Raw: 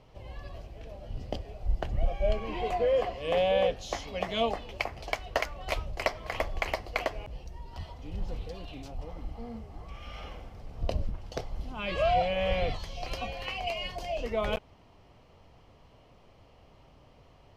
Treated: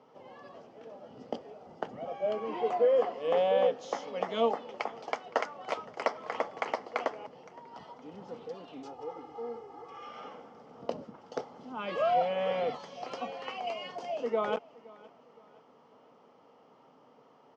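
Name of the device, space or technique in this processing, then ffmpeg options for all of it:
television speaker: -filter_complex "[0:a]highpass=frequency=120:poles=1,highpass=frequency=160:width=0.5412,highpass=frequency=160:width=1.3066,equalizer=frequency=250:width_type=q:width=4:gain=8,equalizer=frequency=460:width_type=q:width=4:gain=9,equalizer=frequency=870:width_type=q:width=4:gain=8,equalizer=frequency=1300:width_type=q:width=4:gain=9,equalizer=frequency=2500:width_type=q:width=4:gain=-5,equalizer=frequency=4100:width_type=q:width=4:gain=-6,lowpass=frequency=6800:width=0.5412,lowpass=frequency=6800:width=1.3066,asettb=1/sr,asplit=3[link_01][link_02][link_03];[link_01]atrim=end=8.834[link_04];[link_02]atrim=start=8.83:end=10.09,asetpts=PTS-STARTPTS,afade=type=in:duration=0.004:curve=qsin,afade=type=out:start_time=1.256:duration=0.004:curve=qsin,aecho=1:1:2.4:0.85,atrim=end_sample=55566[link_05];[link_03]atrim=start=10.086[link_06];[link_04][link_05]acrossfade=duration=0.004:curve1=hsin:curve2=qsin[link_07];[link_07][link_06]acrossfade=duration=0.004:curve1=qsin:curve2=hsin,aecho=1:1:516|1032|1548:0.075|0.0285|0.0108,volume=-4.5dB"

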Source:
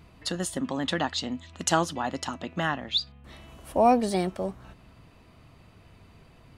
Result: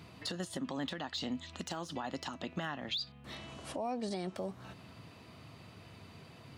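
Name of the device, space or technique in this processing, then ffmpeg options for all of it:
broadcast voice chain: -filter_complex "[0:a]highpass=frequency=89:width=0.5412,highpass=frequency=89:width=1.3066,deesser=0.85,acompressor=threshold=-29dB:ratio=5,equalizer=frequency=4400:width_type=o:width=1.1:gain=4.5,alimiter=level_in=4.5dB:limit=-24dB:level=0:latency=1:release=375,volume=-4.5dB,asettb=1/sr,asplit=3[link_01][link_02][link_03];[link_01]atrim=end=3.354[link_04];[link_02]atrim=start=3.35:end=4.36,asetpts=PTS-STARTPTS,afade=type=in:duration=0.004:curve=qsin,afade=type=out:start_time=1.006:duration=0.004:curve=qsin,lowpass=frequency=9100:width=0.5412,lowpass=frequency=9100:width=1.3066[link_05];[link_03]atrim=start=4.356[link_06];[link_04][link_05]acrossfade=duration=0.004:curve1=hsin:curve2=qsin[link_07];[link_07][link_06]acrossfade=duration=0.004:curve1=qsin:curve2=hsin,volume=1.5dB"

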